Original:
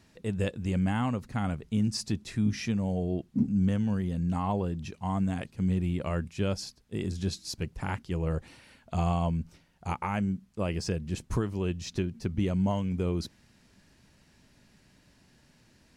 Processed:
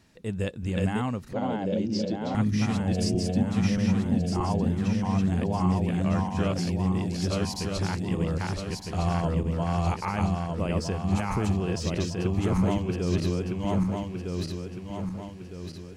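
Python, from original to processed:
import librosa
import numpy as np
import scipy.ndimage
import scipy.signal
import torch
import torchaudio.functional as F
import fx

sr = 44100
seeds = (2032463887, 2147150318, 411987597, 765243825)

y = fx.reverse_delay_fb(x, sr, ms=629, feedback_pct=65, wet_db=0.0)
y = fx.cabinet(y, sr, low_hz=210.0, low_slope=12, high_hz=5400.0, hz=(330.0, 560.0, 1200.0, 1800.0, 2600.0), db=(5, 10, -10, -8, -9), at=(1.33, 2.35))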